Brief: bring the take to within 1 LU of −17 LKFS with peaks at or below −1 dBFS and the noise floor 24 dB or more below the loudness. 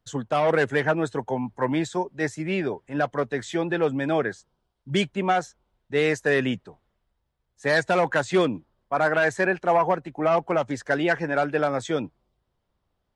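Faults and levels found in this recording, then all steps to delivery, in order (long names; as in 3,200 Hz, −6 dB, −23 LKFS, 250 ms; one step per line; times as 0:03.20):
integrated loudness −24.5 LKFS; sample peak −9.5 dBFS; target loudness −17.0 LKFS
→ level +7.5 dB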